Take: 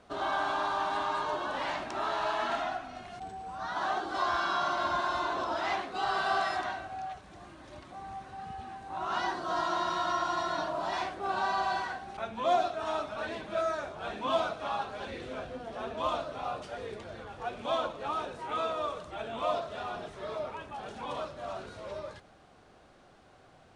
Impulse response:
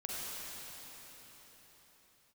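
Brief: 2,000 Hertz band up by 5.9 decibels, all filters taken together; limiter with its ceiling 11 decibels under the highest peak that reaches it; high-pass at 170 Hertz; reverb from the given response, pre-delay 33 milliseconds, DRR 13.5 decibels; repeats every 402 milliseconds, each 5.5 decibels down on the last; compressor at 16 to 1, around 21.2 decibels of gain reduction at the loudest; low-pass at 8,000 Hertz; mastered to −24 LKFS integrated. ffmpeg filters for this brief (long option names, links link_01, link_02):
-filter_complex "[0:a]highpass=170,lowpass=8000,equalizer=frequency=2000:width_type=o:gain=8.5,acompressor=threshold=-43dB:ratio=16,alimiter=level_in=20dB:limit=-24dB:level=0:latency=1,volume=-20dB,aecho=1:1:402|804|1206|1608|2010|2412|2814:0.531|0.281|0.149|0.079|0.0419|0.0222|0.0118,asplit=2[link_01][link_02];[1:a]atrim=start_sample=2205,adelay=33[link_03];[link_02][link_03]afir=irnorm=-1:irlink=0,volume=-16dB[link_04];[link_01][link_04]amix=inputs=2:normalize=0,volume=26dB"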